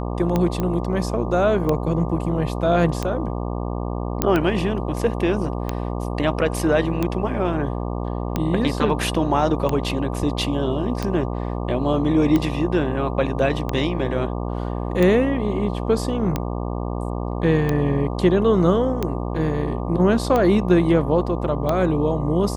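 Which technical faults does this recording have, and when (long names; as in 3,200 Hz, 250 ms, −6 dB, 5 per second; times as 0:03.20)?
mains buzz 60 Hz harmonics 20 −26 dBFS
scratch tick 45 rpm −9 dBFS
0:00.60: click −12 dBFS
0:04.22: click −3 dBFS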